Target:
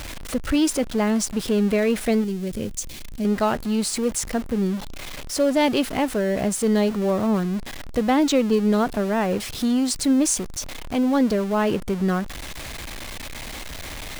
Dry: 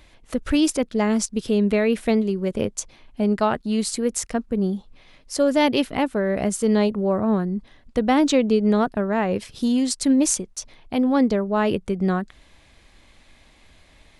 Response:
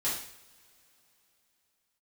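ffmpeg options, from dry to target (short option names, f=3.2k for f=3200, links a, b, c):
-filter_complex "[0:a]aeval=exprs='val(0)+0.5*0.0473*sgn(val(0))':c=same,asettb=1/sr,asplit=3[a][b][c];[a]atrim=end=2.244[d];[b]atrim=start=2.24:end=3.25,asetpts=PTS-STARTPTS,afade=t=in:d=0.004:c=qsin,afade=t=out:st=1.006:d=0.004:c=qsin,equalizer=f=1k:t=o:w=2.4:g=-13[e];[c]atrim=start=3.246[f];[d][e]acrossfade=d=0.004:c1=hsin:c2=qsin[g];[g][f]acrossfade=d=0.004:c1=qsin:c2=hsin,volume=-2dB"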